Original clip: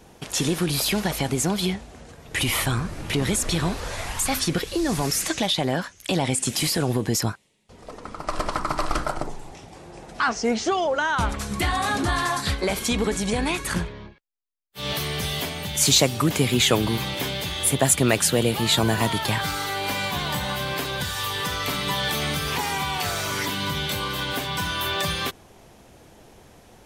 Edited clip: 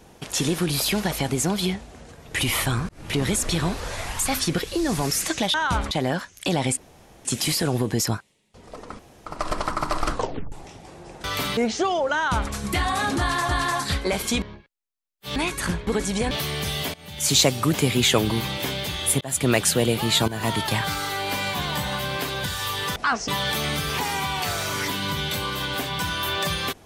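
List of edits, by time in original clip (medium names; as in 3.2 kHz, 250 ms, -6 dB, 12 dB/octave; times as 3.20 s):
2.89–3.16 s: fade in
6.40 s: insert room tone 0.48 s
8.14 s: insert room tone 0.27 s
8.99 s: tape stop 0.41 s
10.12–10.44 s: swap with 21.53–21.86 s
11.02–11.39 s: copy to 5.54 s
12.06–12.36 s: loop, 2 plays
12.99–13.43 s: swap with 13.94–14.88 s
15.51–15.98 s: fade in, from -21.5 dB
17.78–18.06 s: fade in
18.85–19.10 s: fade in, from -16.5 dB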